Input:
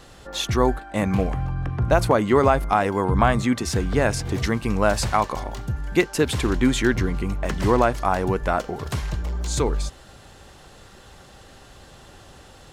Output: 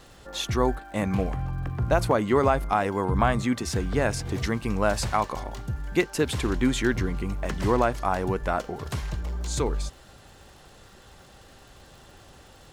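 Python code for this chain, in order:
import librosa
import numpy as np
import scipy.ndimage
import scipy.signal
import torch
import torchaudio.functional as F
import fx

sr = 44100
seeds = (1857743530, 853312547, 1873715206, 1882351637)

y = fx.dmg_crackle(x, sr, seeds[0], per_s=220.0, level_db=-43.0)
y = y * librosa.db_to_amplitude(-4.0)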